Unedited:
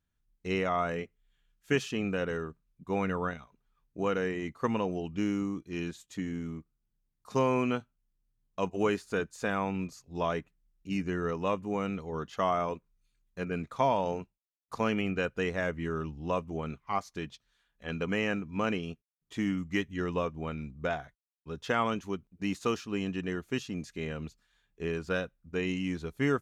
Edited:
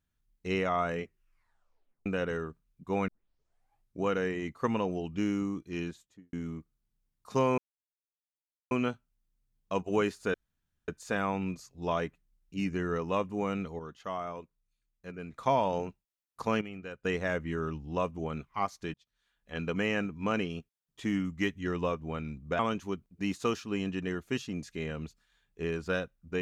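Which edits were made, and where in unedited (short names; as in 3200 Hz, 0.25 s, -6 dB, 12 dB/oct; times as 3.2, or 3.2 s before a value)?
1.03 tape stop 1.03 s
3.08 tape start 0.95 s
5.76–6.33 studio fade out
7.58 insert silence 1.13 s
9.21 insert room tone 0.54 s
12.12–13.66 gain -8 dB
14.94–15.38 gain -11.5 dB
17.27–18 fade in equal-power
20.92–21.8 cut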